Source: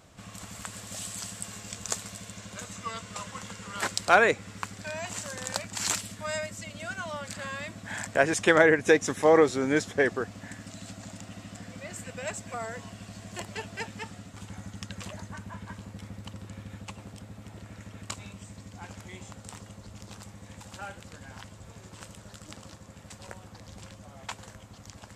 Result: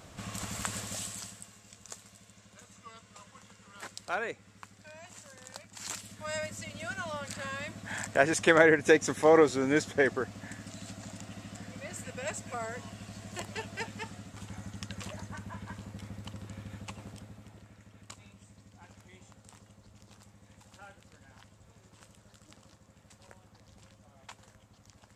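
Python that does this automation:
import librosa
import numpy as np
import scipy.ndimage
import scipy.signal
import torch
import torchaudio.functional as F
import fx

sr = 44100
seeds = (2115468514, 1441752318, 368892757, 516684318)

y = fx.gain(x, sr, db=fx.line((0.77, 4.5), (1.25, -5.5), (1.54, -14.0), (5.69, -14.0), (6.45, -1.5), (17.1, -1.5), (17.78, -11.0)))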